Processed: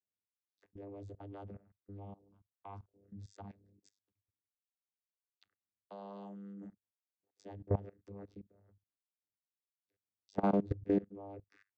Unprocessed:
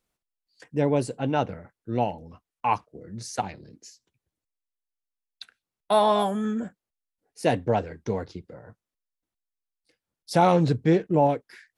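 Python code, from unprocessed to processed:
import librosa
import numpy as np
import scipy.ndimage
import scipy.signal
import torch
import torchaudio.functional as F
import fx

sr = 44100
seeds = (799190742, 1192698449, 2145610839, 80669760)

y = fx.vocoder(x, sr, bands=16, carrier='saw', carrier_hz=99.9)
y = fx.level_steps(y, sr, step_db=20)
y = F.gain(torch.from_numpy(y), -7.5).numpy()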